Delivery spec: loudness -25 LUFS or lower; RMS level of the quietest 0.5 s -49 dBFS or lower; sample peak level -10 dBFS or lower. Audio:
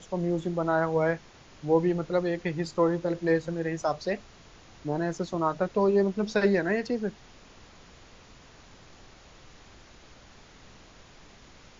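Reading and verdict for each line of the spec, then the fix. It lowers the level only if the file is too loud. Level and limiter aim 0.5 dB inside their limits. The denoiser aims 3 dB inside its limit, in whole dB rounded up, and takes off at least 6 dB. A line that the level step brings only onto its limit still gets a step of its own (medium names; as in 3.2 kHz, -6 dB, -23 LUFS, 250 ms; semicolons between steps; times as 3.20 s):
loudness -28.0 LUFS: pass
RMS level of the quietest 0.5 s -52 dBFS: pass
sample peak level -11.5 dBFS: pass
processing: none needed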